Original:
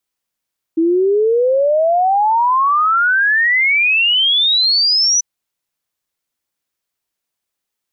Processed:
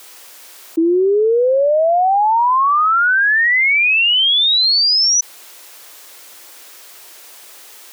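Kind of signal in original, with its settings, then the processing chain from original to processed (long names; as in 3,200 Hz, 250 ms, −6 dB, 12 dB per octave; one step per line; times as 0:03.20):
exponential sine sweep 320 Hz → 6,000 Hz 4.44 s −10.5 dBFS
high-pass filter 330 Hz 24 dB per octave
envelope flattener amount 100%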